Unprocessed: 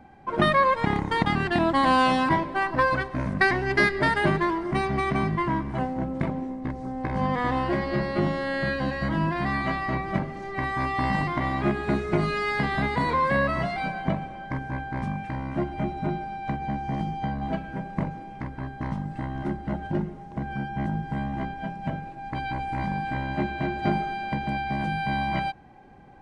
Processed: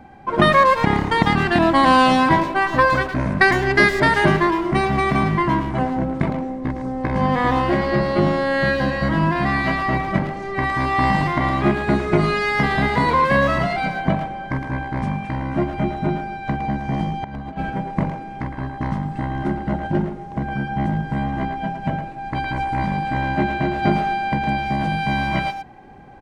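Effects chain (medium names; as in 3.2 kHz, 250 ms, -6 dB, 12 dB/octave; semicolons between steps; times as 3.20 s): 17.24–17.70 s: compressor with a negative ratio -34 dBFS, ratio -0.5; speakerphone echo 110 ms, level -7 dB; trim +6.5 dB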